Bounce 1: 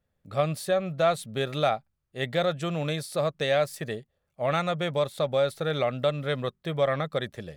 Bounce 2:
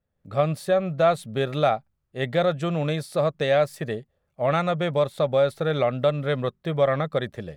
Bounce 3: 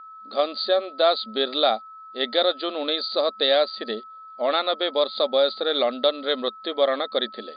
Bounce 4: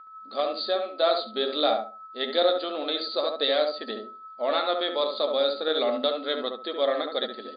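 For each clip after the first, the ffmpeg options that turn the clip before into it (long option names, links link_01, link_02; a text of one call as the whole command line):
ffmpeg -i in.wav -af "highshelf=frequency=2500:gain=-8,dynaudnorm=framelen=130:gausssize=3:maxgain=7dB,volume=-2.5dB" out.wav
ffmpeg -i in.wav -af "aexciter=amount=11.3:drive=6.2:freq=3800,aeval=exprs='val(0)+0.01*sin(2*PI*1300*n/s)':channel_layout=same,afftfilt=real='re*between(b*sr/4096,210,4800)':imag='im*between(b*sr/4096,210,4800)':win_size=4096:overlap=0.75" out.wav
ffmpeg -i in.wav -filter_complex "[0:a]flanger=delay=6.2:depth=8:regen=55:speed=0.28:shape=triangular,asplit=2[link_01][link_02];[link_02]adelay=70,lowpass=frequency=1200:poles=1,volume=-3dB,asplit=2[link_03][link_04];[link_04]adelay=70,lowpass=frequency=1200:poles=1,volume=0.26,asplit=2[link_05][link_06];[link_06]adelay=70,lowpass=frequency=1200:poles=1,volume=0.26,asplit=2[link_07][link_08];[link_08]adelay=70,lowpass=frequency=1200:poles=1,volume=0.26[link_09];[link_03][link_05][link_07][link_09]amix=inputs=4:normalize=0[link_10];[link_01][link_10]amix=inputs=2:normalize=0" out.wav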